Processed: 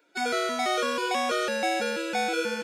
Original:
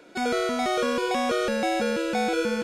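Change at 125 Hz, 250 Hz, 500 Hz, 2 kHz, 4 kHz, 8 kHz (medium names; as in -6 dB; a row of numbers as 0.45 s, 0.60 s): no reading, -6.5 dB, -3.5 dB, +1.0 dB, +1.5 dB, +1.5 dB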